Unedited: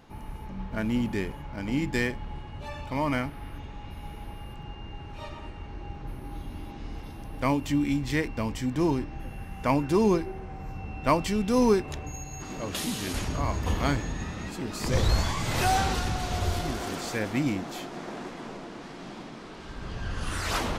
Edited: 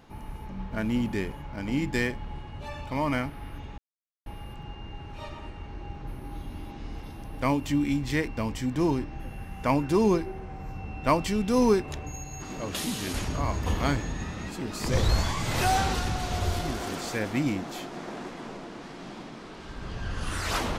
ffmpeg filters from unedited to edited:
-filter_complex "[0:a]asplit=3[a][b][c];[a]atrim=end=3.78,asetpts=PTS-STARTPTS,afade=t=out:st=3.776:d=0.004:c=hsin[d];[b]atrim=start=3.78:end=4.26,asetpts=PTS-STARTPTS,volume=0[e];[c]atrim=start=4.26,asetpts=PTS-STARTPTS,afade=t=in:d=0.004:c=hsin[f];[d][e][f]concat=n=3:v=0:a=1"

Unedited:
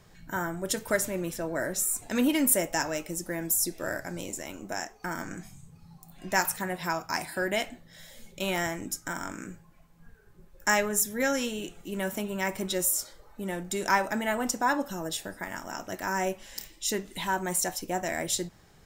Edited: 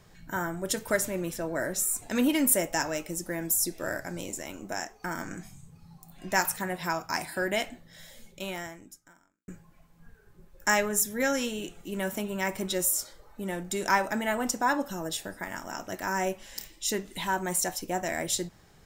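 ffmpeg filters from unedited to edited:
-filter_complex "[0:a]asplit=2[a][b];[a]atrim=end=9.48,asetpts=PTS-STARTPTS,afade=t=out:st=8.08:d=1.4:c=qua[c];[b]atrim=start=9.48,asetpts=PTS-STARTPTS,afade=t=in:d=0.004:c=hsin[d];[c][d]concat=n=2:v=0:a=1"

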